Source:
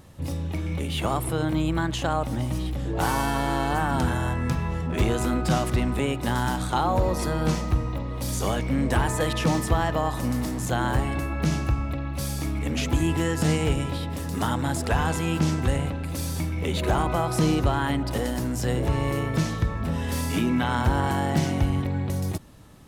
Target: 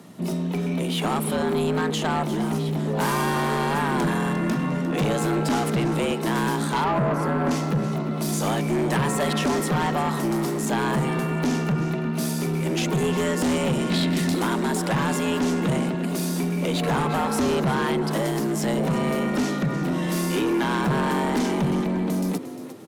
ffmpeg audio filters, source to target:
ffmpeg -i in.wav -filter_complex "[0:a]afreqshift=92,asettb=1/sr,asplit=3[link_01][link_02][link_03];[link_01]atrim=end=13.904[link_04];[link_02]atrim=start=13.9:end=14.35,asetpts=PTS-STARTPTS,afade=type=in:duration=0.004:curve=qsin,afade=type=out:start_time=0.446:duration=0.004:curve=qsin,equalizer=frequency=125:width_type=o:width=1:gain=5,equalizer=frequency=250:width_type=o:width=1:gain=10,equalizer=frequency=500:width_type=o:width=1:gain=-5,equalizer=frequency=1000:width_type=o:width=1:gain=-3,equalizer=frequency=2000:width_type=o:width=1:gain=10,equalizer=frequency=4000:width_type=o:width=1:gain=9,equalizer=frequency=8000:width_type=o:width=1:gain=5[link_05];[link_03]atrim=start=14.346[link_06];[link_04][link_05]acrossfade=duration=0.004:curve1=hsin:curve2=qsin[link_07];[link_07][link_06]acrossfade=duration=0.004:curve1=qsin:curve2=hsin,asplit=4[link_08][link_09][link_10][link_11];[link_09]adelay=352,afreqshift=71,volume=-14dB[link_12];[link_10]adelay=704,afreqshift=142,volume=-24.2dB[link_13];[link_11]adelay=1056,afreqshift=213,volume=-34.3dB[link_14];[link_08][link_12][link_13][link_14]amix=inputs=4:normalize=0,asoftclip=type=hard:threshold=-19dB,asettb=1/sr,asplit=3[link_15][link_16][link_17];[link_15]atrim=end=6.844[link_18];[link_16]atrim=start=6.84:end=7.51,asetpts=PTS-STARTPTS,afade=type=in:duration=0.004:curve=qsin,afade=type=out:start_time=0.666:duration=0.004:curve=qsin,highshelf=frequency=2200:width_type=q:width=1.5:gain=-11[link_19];[link_17]atrim=start=7.506[link_20];[link_18][link_19]acrossfade=duration=0.004:curve1=hsin:curve2=qsin[link_21];[link_21][link_20]acrossfade=duration=0.004:curve1=qsin:curve2=hsin,asoftclip=type=tanh:threshold=-21.5dB,volume=4dB" out.wav

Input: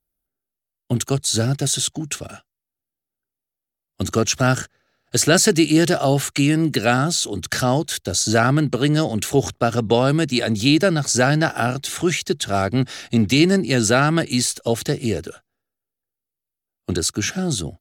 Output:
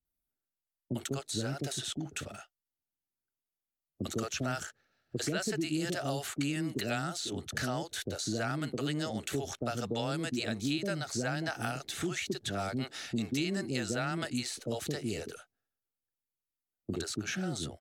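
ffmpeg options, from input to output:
ffmpeg -i in.wav -filter_complex "[0:a]acrossover=split=480[link_01][link_02];[link_02]adelay=50[link_03];[link_01][link_03]amix=inputs=2:normalize=0,acrossover=split=210|3200[link_04][link_05][link_06];[link_04]acompressor=threshold=-34dB:ratio=4[link_07];[link_05]acompressor=threshold=-26dB:ratio=4[link_08];[link_06]acompressor=threshold=-34dB:ratio=4[link_09];[link_07][link_08][link_09]amix=inputs=3:normalize=0,volume=-7.5dB" out.wav

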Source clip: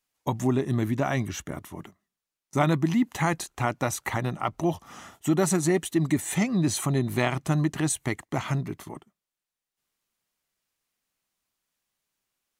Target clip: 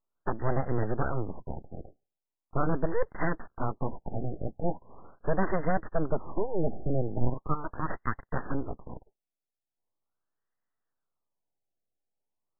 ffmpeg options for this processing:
ffmpeg -i in.wav -filter_complex "[0:a]asplit=2[link_01][link_02];[link_02]alimiter=limit=-17dB:level=0:latency=1:release=377,volume=-2.5dB[link_03];[link_01][link_03]amix=inputs=2:normalize=0,asettb=1/sr,asplit=3[link_04][link_05][link_06];[link_04]atrim=end=7.184[link_07];[link_05]atrim=start=7.18:end=8.22,asetpts=PTS-STARTPTS,afade=type=in:duration=0.004:curve=qsin,afade=type=out:start_time=1.036:duration=0.004:curve=qsin,highpass=frequency=600:width_type=q:width=4.4[link_08];[link_06]atrim=start=8.216[link_09];[link_07][link_08]acrossfade=duration=0.004:curve1=hsin:curve2=qsin[link_10];[link_10][link_09]acrossfade=duration=0.004:curve1=qsin:curve2=hsin,aeval=exprs='abs(val(0))':channel_layout=same,afftfilt=real='re*lt(b*sr/1024,800*pow(2100/800,0.5+0.5*sin(2*PI*0.4*pts/sr)))':imag='im*lt(b*sr/1024,800*pow(2100/800,0.5+0.5*sin(2*PI*0.4*pts/sr)))':win_size=1024:overlap=0.75,volume=-4dB" out.wav

